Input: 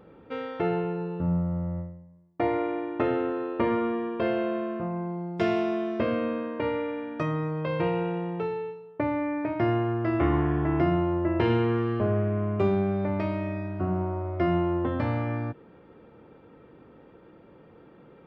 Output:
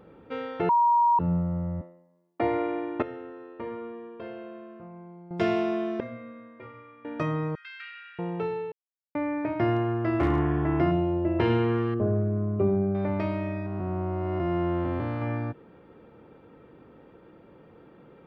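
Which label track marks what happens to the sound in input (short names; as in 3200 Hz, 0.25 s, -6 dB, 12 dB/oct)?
0.690000	1.190000	bleep 949 Hz -17.5 dBFS
1.810000	2.410000	HPF 260 Hz 24 dB/oct
3.020000	5.310000	resonator 460 Hz, decay 0.42 s, mix 80%
6.000000	7.050000	metallic resonator 120 Hz, decay 0.45 s, inharmonicity 0.008
7.550000	8.190000	rippled Chebyshev high-pass 1300 Hz, ripple 3 dB
8.720000	9.150000	mute
9.740000	10.390000	hard clip -17 dBFS
10.910000	11.390000	band shelf 1400 Hz -8.5 dB 1.3 oct
11.940000	12.950000	formant sharpening exponent 1.5
13.660000	15.220000	time blur width 0.431 s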